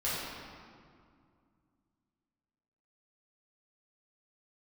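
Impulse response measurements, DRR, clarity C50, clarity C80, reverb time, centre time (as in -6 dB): -10.0 dB, -2.5 dB, -0.5 dB, 2.2 s, 132 ms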